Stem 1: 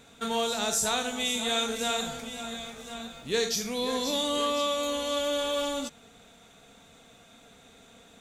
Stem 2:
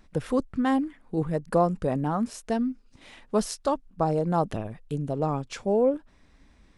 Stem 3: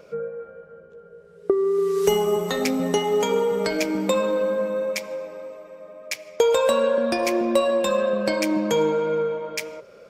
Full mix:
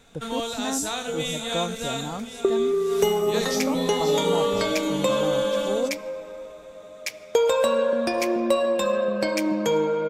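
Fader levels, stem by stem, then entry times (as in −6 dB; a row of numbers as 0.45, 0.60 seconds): −1.5, −6.5, −1.5 decibels; 0.00, 0.00, 0.95 seconds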